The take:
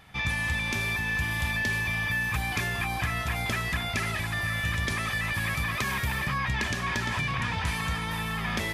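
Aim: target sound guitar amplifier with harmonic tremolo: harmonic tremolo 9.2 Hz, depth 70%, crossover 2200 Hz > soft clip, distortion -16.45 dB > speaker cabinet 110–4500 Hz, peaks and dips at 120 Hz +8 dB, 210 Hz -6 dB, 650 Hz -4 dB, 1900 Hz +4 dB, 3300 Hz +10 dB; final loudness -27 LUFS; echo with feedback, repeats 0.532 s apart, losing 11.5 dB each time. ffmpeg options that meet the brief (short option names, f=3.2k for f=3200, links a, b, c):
-filter_complex "[0:a]aecho=1:1:532|1064|1596:0.266|0.0718|0.0194,acrossover=split=2200[a][b];[a]aeval=exprs='val(0)*(1-0.7/2+0.7/2*cos(2*PI*9.2*n/s))':c=same[c];[b]aeval=exprs='val(0)*(1-0.7/2-0.7/2*cos(2*PI*9.2*n/s))':c=same[d];[c][d]amix=inputs=2:normalize=0,asoftclip=threshold=-26.5dB,highpass=110,equalizer=f=120:t=q:w=4:g=8,equalizer=f=210:t=q:w=4:g=-6,equalizer=f=650:t=q:w=4:g=-4,equalizer=f=1.9k:t=q:w=4:g=4,equalizer=f=3.3k:t=q:w=4:g=10,lowpass=f=4.5k:w=0.5412,lowpass=f=4.5k:w=1.3066,volume=3.5dB"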